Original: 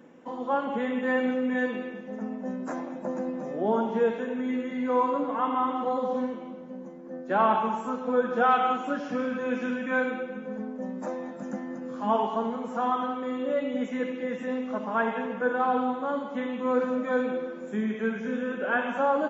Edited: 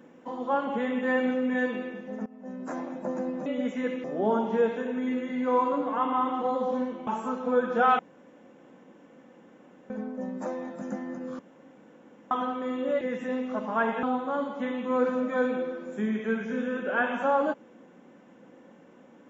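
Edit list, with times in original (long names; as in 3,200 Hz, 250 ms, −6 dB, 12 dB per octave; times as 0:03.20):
0:02.26–0:02.81: fade in, from −21 dB
0:06.49–0:07.68: remove
0:08.60–0:10.51: fill with room tone
0:12.00–0:12.92: fill with room tone
0:13.62–0:14.20: move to 0:03.46
0:15.22–0:15.78: remove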